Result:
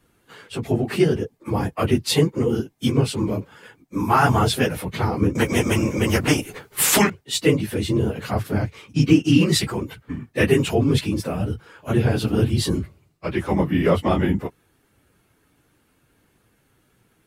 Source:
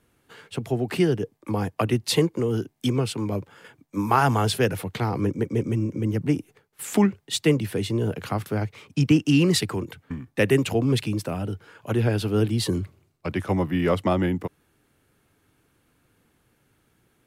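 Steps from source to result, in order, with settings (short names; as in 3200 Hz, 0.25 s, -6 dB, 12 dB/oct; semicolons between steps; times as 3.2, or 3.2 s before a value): phase scrambler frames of 50 ms; 5.35–7.1 spectral compressor 2:1; gain +3 dB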